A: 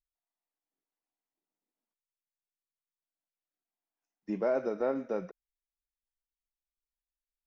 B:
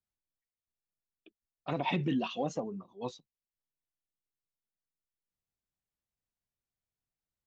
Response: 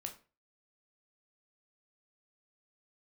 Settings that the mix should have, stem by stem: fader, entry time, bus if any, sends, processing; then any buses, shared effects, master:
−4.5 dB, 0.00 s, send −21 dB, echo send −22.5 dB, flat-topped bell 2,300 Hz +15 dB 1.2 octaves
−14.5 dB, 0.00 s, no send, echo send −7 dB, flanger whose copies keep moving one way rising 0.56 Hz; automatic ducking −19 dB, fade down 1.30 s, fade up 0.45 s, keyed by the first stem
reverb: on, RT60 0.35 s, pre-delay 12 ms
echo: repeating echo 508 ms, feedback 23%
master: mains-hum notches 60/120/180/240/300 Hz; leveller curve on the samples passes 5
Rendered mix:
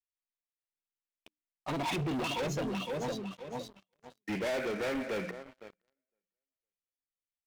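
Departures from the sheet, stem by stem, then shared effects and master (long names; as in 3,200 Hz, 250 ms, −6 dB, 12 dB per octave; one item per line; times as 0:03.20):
stem A −4.5 dB → −12.0 dB
stem B −14.5 dB → −5.5 dB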